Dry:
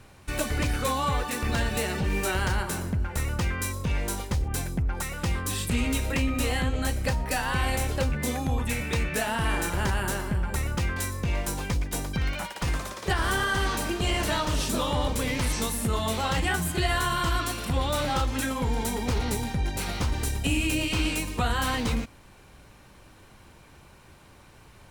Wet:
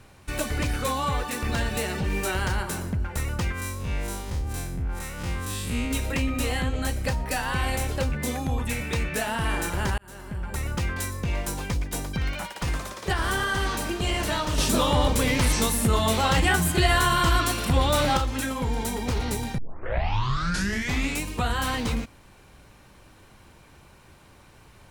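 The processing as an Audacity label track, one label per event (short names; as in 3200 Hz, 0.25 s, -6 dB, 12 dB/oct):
3.520000	5.910000	time blur width 94 ms
9.980000	10.710000	fade in
14.580000	18.170000	gain +5 dB
19.580000	19.580000	tape start 1.68 s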